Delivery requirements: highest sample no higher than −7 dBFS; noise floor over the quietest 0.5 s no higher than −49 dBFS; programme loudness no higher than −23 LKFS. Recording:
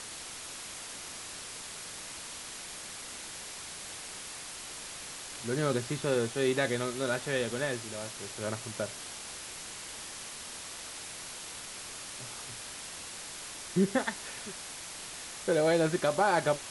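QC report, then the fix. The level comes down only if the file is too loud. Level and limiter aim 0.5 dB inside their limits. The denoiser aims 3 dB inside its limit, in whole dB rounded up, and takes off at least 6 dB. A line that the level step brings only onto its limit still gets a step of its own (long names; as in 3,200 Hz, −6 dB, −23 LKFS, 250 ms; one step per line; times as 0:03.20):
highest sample −14.0 dBFS: in spec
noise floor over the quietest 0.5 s −43 dBFS: out of spec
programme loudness −34.5 LKFS: in spec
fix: broadband denoise 9 dB, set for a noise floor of −43 dBFS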